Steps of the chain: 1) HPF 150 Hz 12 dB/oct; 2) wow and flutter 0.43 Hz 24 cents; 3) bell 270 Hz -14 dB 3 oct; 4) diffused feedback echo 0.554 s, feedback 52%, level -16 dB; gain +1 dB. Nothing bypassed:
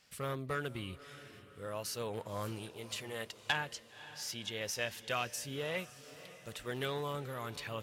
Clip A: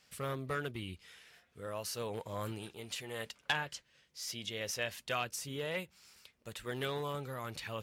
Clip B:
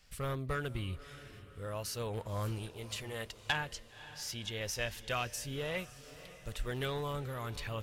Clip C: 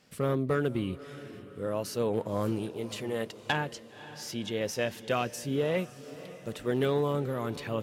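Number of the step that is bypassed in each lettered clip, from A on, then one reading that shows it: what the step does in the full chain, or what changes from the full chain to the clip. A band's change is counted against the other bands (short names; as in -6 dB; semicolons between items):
4, echo-to-direct -14.5 dB to none; 1, 125 Hz band +5.0 dB; 3, 250 Hz band +9.5 dB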